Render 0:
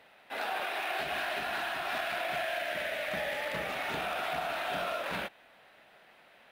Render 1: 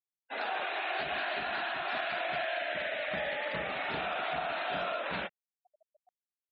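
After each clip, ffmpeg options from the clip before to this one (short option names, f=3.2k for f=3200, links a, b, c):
-af "afftfilt=real='re*gte(hypot(re,im),0.00794)':imag='im*gte(hypot(re,im),0.00794)':win_size=1024:overlap=0.75,areverse,acompressor=mode=upward:threshold=-56dB:ratio=2.5,areverse"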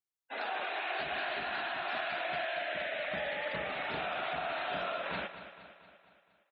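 -af "aecho=1:1:233|466|699|932|1165|1398:0.251|0.136|0.0732|0.0396|0.0214|0.0115,volume=-2dB"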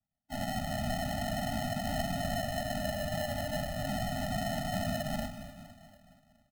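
-filter_complex "[0:a]acrusher=samples=38:mix=1:aa=0.000001,asplit=5[a][b][c][d][e];[b]adelay=126,afreqshift=-86,volume=-14dB[f];[c]adelay=252,afreqshift=-172,volume=-20.6dB[g];[d]adelay=378,afreqshift=-258,volume=-27.1dB[h];[e]adelay=504,afreqshift=-344,volume=-33.7dB[i];[a][f][g][h][i]amix=inputs=5:normalize=0,afftfilt=real='re*eq(mod(floor(b*sr/1024/290),2),0)':imag='im*eq(mod(floor(b*sr/1024/290),2),0)':win_size=1024:overlap=0.75,volume=5.5dB"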